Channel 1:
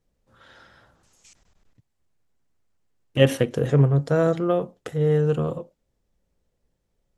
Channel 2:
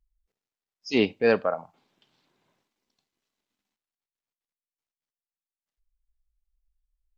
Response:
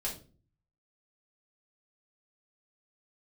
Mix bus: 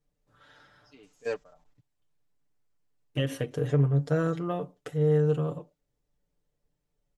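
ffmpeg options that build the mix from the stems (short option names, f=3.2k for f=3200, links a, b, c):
-filter_complex "[0:a]alimiter=limit=-10.5dB:level=0:latency=1:release=213,volume=-7.5dB,asplit=2[a][b];[1:a]alimiter=limit=-16.5dB:level=0:latency=1,volume=-6dB[c];[b]apad=whole_len=320895[d];[c][d]sidechaingate=range=-24dB:threshold=-60dB:ratio=16:detection=peak[e];[a][e]amix=inputs=2:normalize=0,aecho=1:1:6.8:0.72"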